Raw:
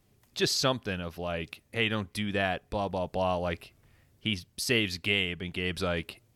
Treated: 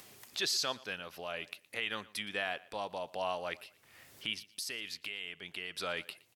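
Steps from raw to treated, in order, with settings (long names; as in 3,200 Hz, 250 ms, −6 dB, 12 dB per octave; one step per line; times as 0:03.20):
high-pass filter 1,100 Hz 6 dB per octave
upward compression, threshold −38 dBFS
brickwall limiter −20.5 dBFS, peak gain reduction 7 dB
0:04.47–0:05.78: downward compressor 3 to 1, threshold −37 dBFS, peak gain reduction 6.5 dB
on a send: repeating echo 117 ms, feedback 31%, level −21.5 dB
on the sum: level −1.5 dB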